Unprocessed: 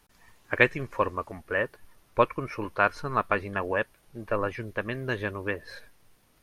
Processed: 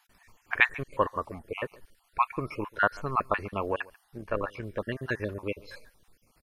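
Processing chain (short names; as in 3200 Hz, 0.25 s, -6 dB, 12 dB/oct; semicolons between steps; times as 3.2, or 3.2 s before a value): random spectral dropouts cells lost 41%; 4.18–4.63 AM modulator 69 Hz, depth 40%; outdoor echo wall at 24 m, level -23 dB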